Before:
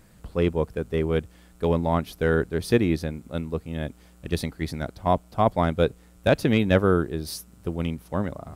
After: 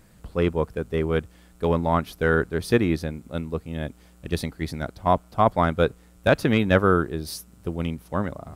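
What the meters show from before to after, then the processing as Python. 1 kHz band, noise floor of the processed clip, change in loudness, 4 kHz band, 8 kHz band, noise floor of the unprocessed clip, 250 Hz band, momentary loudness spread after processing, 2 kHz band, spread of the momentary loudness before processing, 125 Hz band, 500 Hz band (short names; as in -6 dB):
+3.0 dB, -53 dBFS, +1.0 dB, +0.5 dB, 0.0 dB, -53 dBFS, 0.0 dB, 12 LU, +3.5 dB, 12 LU, 0.0 dB, +0.5 dB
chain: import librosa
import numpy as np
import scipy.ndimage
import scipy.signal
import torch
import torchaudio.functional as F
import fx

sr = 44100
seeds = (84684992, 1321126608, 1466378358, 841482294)

y = fx.dynamic_eq(x, sr, hz=1300.0, q=1.4, threshold_db=-38.0, ratio=4.0, max_db=6)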